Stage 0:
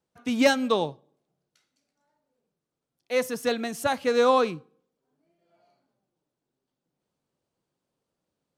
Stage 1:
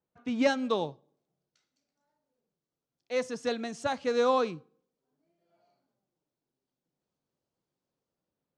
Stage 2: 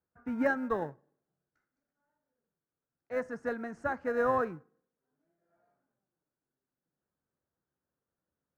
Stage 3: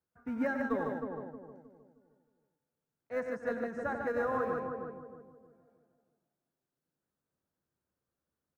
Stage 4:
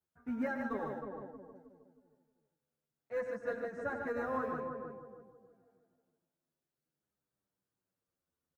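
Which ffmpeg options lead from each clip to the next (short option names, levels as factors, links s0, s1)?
-filter_complex "[0:a]lowpass=f=7800:w=0.5412,lowpass=f=7800:w=1.3066,aemphasis=mode=reproduction:type=75fm,acrossover=split=4700[s0][s1];[s1]dynaudnorm=f=120:g=9:m=3.98[s2];[s0][s2]amix=inputs=2:normalize=0,volume=0.531"
-filter_complex "[0:a]equalizer=f=75:w=4:g=10.5,asplit=2[s0][s1];[s1]acrusher=samples=38:mix=1:aa=0.000001,volume=0.251[s2];[s0][s2]amix=inputs=2:normalize=0,highshelf=f=2300:t=q:w=3:g=-13,volume=0.562"
-filter_complex "[0:a]asplit=2[s0][s1];[s1]aecho=0:1:93|148:0.299|0.473[s2];[s0][s2]amix=inputs=2:normalize=0,alimiter=limit=0.0841:level=0:latency=1:release=143,asplit=2[s3][s4];[s4]adelay=312,lowpass=f=870:p=1,volume=0.631,asplit=2[s5][s6];[s6]adelay=312,lowpass=f=870:p=1,volume=0.38,asplit=2[s7][s8];[s8]adelay=312,lowpass=f=870:p=1,volume=0.38,asplit=2[s9][s10];[s10]adelay=312,lowpass=f=870:p=1,volume=0.38,asplit=2[s11][s12];[s12]adelay=312,lowpass=f=870:p=1,volume=0.38[s13];[s5][s7][s9][s11][s13]amix=inputs=5:normalize=0[s14];[s3][s14]amix=inputs=2:normalize=0,volume=0.794"
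-filter_complex "[0:a]asplit=2[s0][s1];[s1]adelay=8.8,afreqshift=-0.48[s2];[s0][s2]amix=inputs=2:normalize=1"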